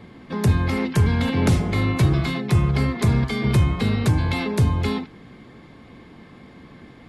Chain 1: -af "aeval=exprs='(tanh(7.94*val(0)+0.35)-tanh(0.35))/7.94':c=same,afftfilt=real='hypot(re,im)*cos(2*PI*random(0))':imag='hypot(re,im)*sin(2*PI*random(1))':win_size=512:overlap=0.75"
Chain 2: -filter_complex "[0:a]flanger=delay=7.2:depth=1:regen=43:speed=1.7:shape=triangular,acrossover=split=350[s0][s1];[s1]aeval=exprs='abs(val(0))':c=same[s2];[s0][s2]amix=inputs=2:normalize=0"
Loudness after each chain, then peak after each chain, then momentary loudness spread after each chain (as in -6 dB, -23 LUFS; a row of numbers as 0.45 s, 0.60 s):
-31.5 LUFS, -25.5 LUFS; -16.5 dBFS, -10.5 dBFS; 3 LU, 6 LU